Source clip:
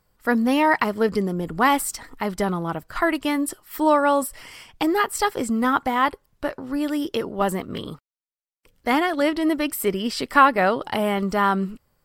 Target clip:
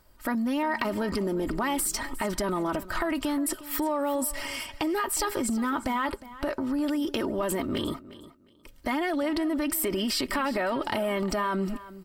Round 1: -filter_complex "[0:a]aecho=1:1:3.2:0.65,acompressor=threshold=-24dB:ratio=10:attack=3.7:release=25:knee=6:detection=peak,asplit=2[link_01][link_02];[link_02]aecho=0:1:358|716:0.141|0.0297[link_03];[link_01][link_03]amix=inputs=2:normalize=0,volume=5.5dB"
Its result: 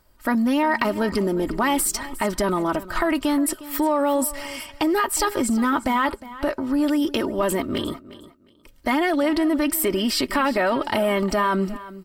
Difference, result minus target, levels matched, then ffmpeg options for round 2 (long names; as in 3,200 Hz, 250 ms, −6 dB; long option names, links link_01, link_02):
downward compressor: peak gain reduction −7 dB
-filter_complex "[0:a]aecho=1:1:3.2:0.65,acompressor=threshold=-32dB:ratio=10:attack=3.7:release=25:knee=6:detection=peak,asplit=2[link_01][link_02];[link_02]aecho=0:1:358|716:0.141|0.0297[link_03];[link_01][link_03]amix=inputs=2:normalize=0,volume=5.5dB"